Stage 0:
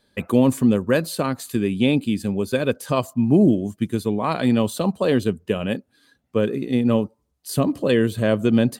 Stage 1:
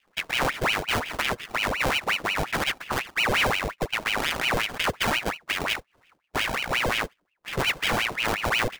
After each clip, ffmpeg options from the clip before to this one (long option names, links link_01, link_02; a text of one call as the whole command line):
ffmpeg -i in.wav -af "acrusher=samples=28:mix=1:aa=0.000001,alimiter=limit=-14.5dB:level=0:latency=1:release=54,aeval=exprs='val(0)*sin(2*PI*1500*n/s+1500*0.85/5.6*sin(2*PI*5.6*n/s))':channel_layout=same" out.wav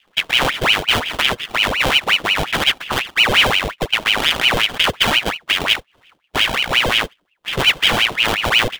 ffmpeg -i in.wav -af "equalizer=frequency=3200:width=2.4:gain=9.5,volume=6dB" out.wav